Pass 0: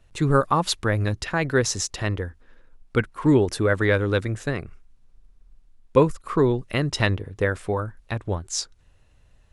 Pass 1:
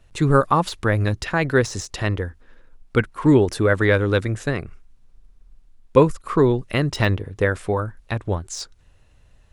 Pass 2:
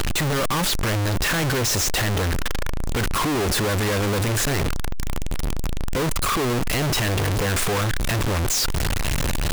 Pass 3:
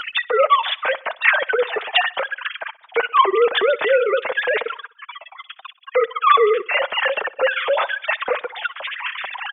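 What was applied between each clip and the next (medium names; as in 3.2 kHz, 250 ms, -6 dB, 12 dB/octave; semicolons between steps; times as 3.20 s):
de-esser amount 60%; trim +3 dB
one-bit comparator
formants replaced by sine waves; flange 0.85 Hz, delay 3.5 ms, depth 5.8 ms, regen -13%; feedback delay 63 ms, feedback 53%, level -21.5 dB; trim +4 dB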